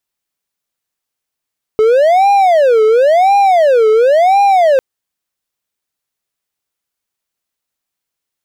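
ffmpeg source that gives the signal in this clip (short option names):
-f lavfi -i "aevalsrc='0.631*(1-4*abs(mod((619*t-187/(2*PI*0.95)*sin(2*PI*0.95*t))+0.25,1)-0.5))':d=3:s=44100"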